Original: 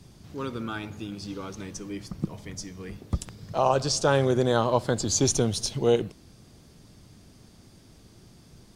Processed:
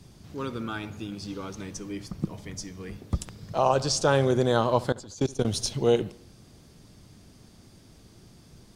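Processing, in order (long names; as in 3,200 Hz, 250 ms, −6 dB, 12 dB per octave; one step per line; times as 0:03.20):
0:04.92–0:05.45: output level in coarse steps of 22 dB
delay with a low-pass on its return 73 ms, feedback 49%, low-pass 3,800 Hz, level −21.5 dB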